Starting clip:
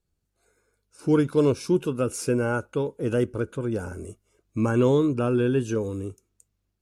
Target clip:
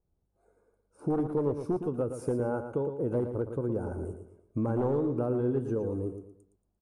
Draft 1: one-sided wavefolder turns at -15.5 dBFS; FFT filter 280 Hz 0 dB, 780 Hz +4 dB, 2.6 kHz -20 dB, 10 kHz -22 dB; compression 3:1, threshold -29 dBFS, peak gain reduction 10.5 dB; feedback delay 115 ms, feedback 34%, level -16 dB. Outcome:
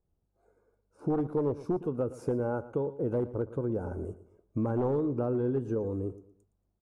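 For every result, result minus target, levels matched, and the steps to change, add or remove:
8 kHz band -5.5 dB; echo-to-direct -7.5 dB
add after compression: peaking EQ 9.4 kHz +11.5 dB 0.29 oct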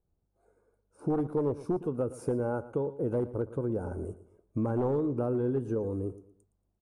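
echo-to-direct -7.5 dB
change: feedback delay 115 ms, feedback 34%, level -8.5 dB

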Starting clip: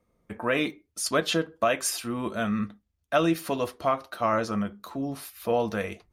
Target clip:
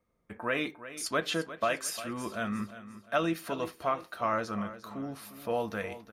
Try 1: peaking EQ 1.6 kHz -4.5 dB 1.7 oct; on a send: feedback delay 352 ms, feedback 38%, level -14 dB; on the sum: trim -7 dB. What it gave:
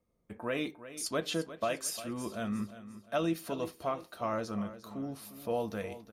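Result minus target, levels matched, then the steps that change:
2 kHz band -5.0 dB
change: peaking EQ 1.6 kHz +4 dB 1.7 oct

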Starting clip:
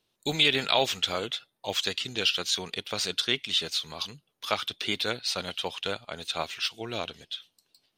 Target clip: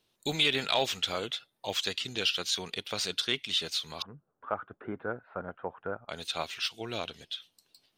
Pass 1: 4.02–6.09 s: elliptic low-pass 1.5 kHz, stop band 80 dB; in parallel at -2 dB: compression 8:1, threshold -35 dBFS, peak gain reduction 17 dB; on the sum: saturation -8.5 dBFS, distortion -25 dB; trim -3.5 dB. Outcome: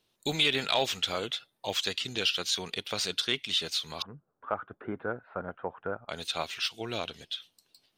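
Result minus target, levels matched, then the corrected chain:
compression: peak gain reduction -7 dB
4.02–6.09 s: elliptic low-pass 1.5 kHz, stop band 80 dB; in parallel at -2 dB: compression 8:1, threshold -43 dBFS, peak gain reduction 24 dB; on the sum: saturation -8.5 dBFS, distortion -26 dB; trim -3.5 dB

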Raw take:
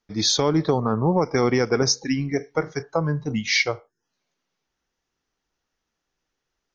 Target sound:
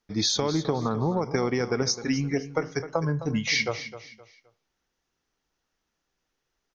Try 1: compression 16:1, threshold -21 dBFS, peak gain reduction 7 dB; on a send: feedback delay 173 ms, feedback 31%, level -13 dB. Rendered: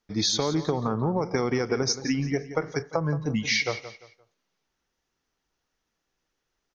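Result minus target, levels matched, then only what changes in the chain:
echo 87 ms early
change: feedback delay 260 ms, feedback 31%, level -13 dB

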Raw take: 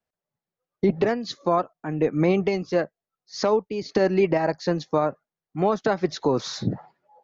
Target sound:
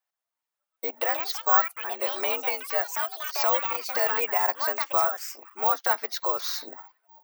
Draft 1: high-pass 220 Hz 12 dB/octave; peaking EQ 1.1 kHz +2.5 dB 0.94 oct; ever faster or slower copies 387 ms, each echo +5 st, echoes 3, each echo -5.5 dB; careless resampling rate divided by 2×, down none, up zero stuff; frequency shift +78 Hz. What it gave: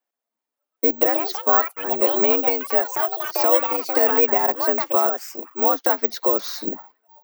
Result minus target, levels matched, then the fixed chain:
250 Hz band +13.0 dB
high-pass 800 Hz 12 dB/octave; peaking EQ 1.1 kHz +2.5 dB 0.94 oct; ever faster or slower copies 387 ms, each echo +5 st, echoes 3, each echo -5.5 dB; careless resampling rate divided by 2×, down none, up zero stuff; frequency shift +78 Hz

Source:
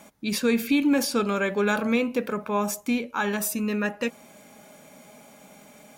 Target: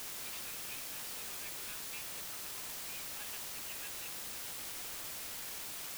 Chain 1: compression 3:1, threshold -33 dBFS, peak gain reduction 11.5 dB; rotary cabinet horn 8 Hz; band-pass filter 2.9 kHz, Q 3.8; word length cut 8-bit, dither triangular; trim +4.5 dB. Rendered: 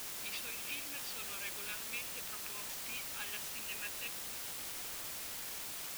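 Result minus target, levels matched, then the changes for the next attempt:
compression: peak gain reduction -7.5 dB
change: compression 3:1, threshold -44.5 dBFS, peak gain reduction 19 dB

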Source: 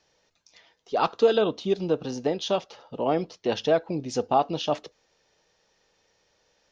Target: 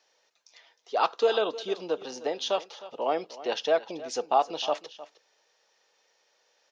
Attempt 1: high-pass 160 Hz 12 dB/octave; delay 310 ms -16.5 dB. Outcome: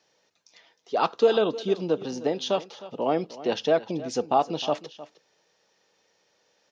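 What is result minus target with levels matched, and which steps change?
125 Hz band +14.0 dB
change: high-pass 520 Hz 12 dB/octave

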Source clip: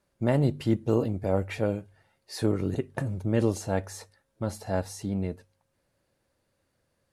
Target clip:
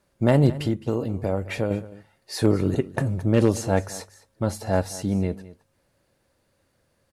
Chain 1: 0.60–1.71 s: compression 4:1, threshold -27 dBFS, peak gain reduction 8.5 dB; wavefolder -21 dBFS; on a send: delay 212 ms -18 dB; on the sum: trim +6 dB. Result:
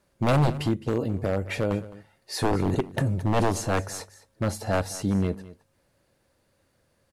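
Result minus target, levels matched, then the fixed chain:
wavefolder: distortion +26 dB
0.60–1.71 s: compression 4:1, threshold -27 dBFS, peak gain reduction 8.5 dB; wavefolder -13 dBFS; on a send: delay 212 ms -18 dB; on the sum: trim +6 dB

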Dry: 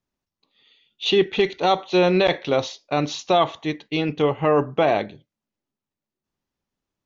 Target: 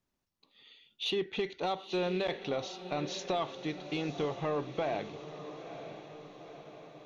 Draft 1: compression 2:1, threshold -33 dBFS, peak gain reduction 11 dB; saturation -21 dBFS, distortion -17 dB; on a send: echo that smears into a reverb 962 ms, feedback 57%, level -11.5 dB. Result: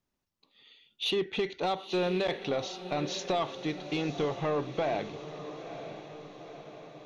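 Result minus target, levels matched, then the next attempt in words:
compression: peak gain reduction -3.5 dB
compression 2:1, threshold -40.5 dBFS, peak gain reduction 15 dB; saturation -21 dBFS, distortion -23 dB; on a send: echo that smears into a reverb 962 ms, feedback 57%, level -11.5 dB

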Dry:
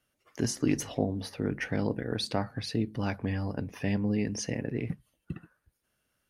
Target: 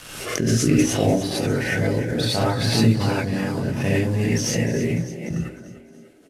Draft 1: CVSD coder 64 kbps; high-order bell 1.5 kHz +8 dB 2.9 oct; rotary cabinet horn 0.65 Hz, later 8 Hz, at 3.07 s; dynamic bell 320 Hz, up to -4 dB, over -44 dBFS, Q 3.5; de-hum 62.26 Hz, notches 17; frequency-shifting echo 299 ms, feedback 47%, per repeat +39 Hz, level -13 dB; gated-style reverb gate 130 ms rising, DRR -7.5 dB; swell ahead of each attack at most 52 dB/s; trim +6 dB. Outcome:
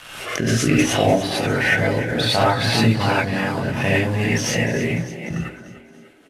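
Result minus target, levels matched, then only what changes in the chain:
2 kHz band +5.5 dB
remove: high-order bell 1.5 kHz +8 dB 2.9 oct

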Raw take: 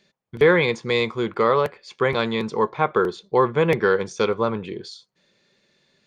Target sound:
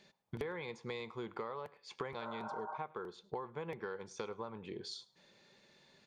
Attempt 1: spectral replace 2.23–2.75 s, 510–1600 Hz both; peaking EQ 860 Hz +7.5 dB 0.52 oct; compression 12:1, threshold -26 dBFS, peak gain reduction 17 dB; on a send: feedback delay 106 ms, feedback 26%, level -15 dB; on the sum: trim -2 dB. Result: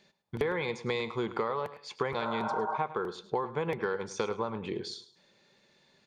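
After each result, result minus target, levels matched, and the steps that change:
compression: peak gain reduction -10.5 dB; echo-to-direct +8 dB
change: compression 12:1, threshold -37.5 dBFS, peak gain reduction 27.5 dB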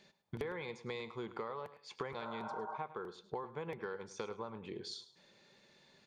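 echo-to-direct +8 dB
change: feedback delay 106 ms, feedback 26%, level -23 dB

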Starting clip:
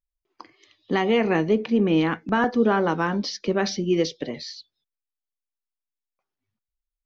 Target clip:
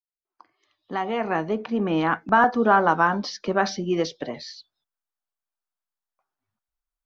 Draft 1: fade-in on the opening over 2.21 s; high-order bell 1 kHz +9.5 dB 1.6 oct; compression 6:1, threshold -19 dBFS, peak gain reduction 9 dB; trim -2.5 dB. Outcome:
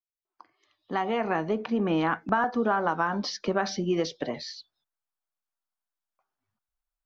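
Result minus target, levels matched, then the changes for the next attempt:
compression: peak gain reduction +9 dB
remove: compression 6:1, threshold -19 dBFS, peak gain reduction 9 dB

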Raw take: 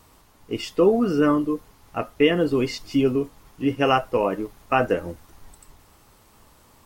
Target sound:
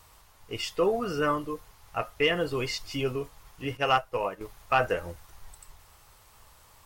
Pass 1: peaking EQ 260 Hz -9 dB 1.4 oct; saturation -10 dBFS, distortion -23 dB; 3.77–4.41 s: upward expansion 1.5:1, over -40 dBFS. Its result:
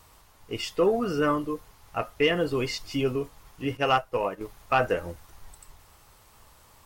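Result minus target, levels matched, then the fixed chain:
250 Hz band +3.5 dB
peaking EQ 260 Hz -15 dB 1.4 oct; saturation -10 dBFS, distortion -23 dB; 3.77–4.41 s: upward expansion 1.5:1, over -40 dBFS

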